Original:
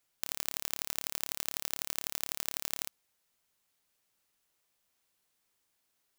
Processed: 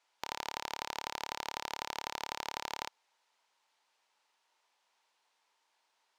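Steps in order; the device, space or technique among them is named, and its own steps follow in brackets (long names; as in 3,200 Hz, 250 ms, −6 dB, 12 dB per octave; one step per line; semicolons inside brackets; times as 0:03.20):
intercom (band-pass filter 500–5,000 Hz; parametric band 910 Hz +10.5 dB 0.36 octaves; soft clipping −24.5 dBFS, distortion −8 dB)
level +5.5 dB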